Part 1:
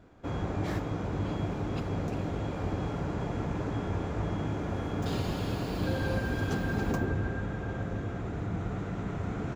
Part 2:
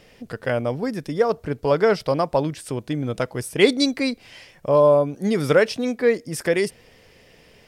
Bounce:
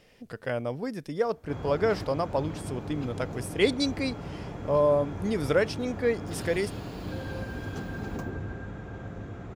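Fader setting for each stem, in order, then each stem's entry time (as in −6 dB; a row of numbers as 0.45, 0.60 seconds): −5.0, −7.5 decibels; 1.25, 0.00 seconds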